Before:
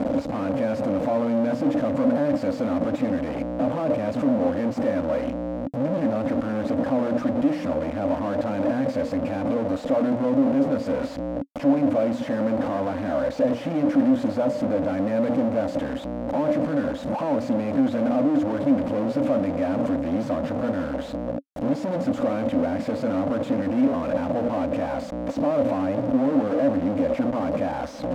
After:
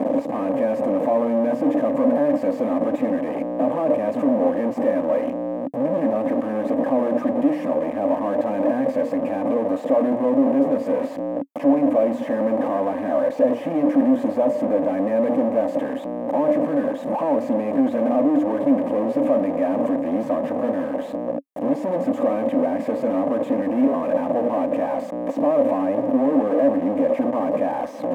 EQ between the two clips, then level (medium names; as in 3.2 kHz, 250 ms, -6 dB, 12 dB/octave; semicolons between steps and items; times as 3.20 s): high-pass 270 Hz 12 dB/octave; Butterworth band-stop 1.4 kHz, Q 5.3; peaking EQ 4.6 kHz -13.5 dB 1.6 oct; +5.0 dB